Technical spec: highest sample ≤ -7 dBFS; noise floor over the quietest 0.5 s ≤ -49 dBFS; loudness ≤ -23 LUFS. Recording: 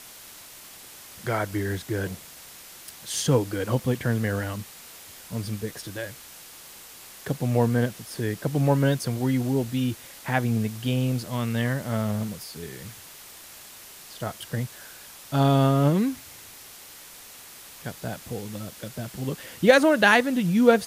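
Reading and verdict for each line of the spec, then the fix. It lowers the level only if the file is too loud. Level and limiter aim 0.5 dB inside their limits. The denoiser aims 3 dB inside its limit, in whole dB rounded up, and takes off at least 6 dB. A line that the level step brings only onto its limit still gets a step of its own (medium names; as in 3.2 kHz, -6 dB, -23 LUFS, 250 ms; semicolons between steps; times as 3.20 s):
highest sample -3.5 dBFS: fail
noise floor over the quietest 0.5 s -46 dBFS: fail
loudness -25.5 LUFS: pass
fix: noise reduction 6 dB, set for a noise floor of -46 dBFS; peak limiter -7.5 dBFS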